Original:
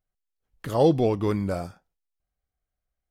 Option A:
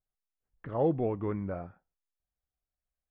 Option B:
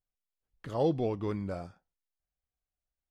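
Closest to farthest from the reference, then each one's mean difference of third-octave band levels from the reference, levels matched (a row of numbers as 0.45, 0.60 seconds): B, A; 1.5, 4.5 decibels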